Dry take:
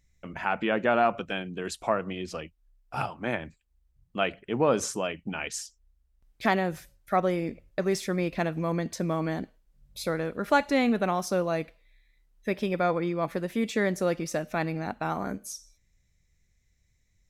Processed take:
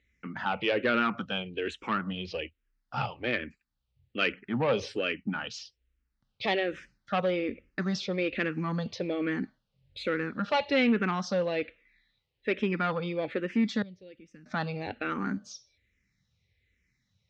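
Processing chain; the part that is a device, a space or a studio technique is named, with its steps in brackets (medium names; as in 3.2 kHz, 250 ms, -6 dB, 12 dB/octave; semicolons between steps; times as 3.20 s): 13.82–14.46 s: amplifier tone stack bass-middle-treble 10-0-1; barber-pole phaser into a guitar amplifier (barber-pole phaser -1.2 Hz; saturation -22 dBFS, distortion -15 dB; cabinet simulation 100–4600 Hz, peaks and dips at 160 Hz -6 dB, 350 Hz -4 dB, 680 Hz -10 dB, 1 kHz -7 dB, 2.8 kHz +3 dB); trim +6 dB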